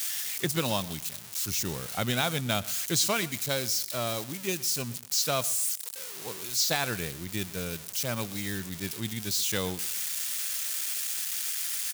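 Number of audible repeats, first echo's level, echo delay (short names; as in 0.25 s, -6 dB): 2, -20.0 dB, 0.122 s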